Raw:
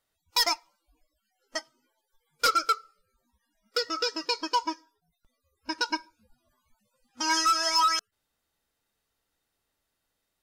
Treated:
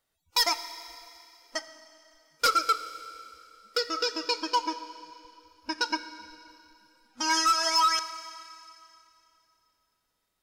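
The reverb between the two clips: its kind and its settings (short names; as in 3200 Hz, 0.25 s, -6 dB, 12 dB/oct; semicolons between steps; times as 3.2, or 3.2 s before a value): Schroeder reverb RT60 2.7 s, combs from 29 ms, DRR 11.5 dB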